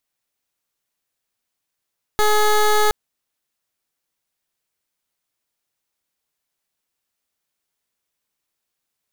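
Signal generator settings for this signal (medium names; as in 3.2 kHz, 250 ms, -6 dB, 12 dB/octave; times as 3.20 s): pulse 423 Hz, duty 16% -15 dBFS 0.72 s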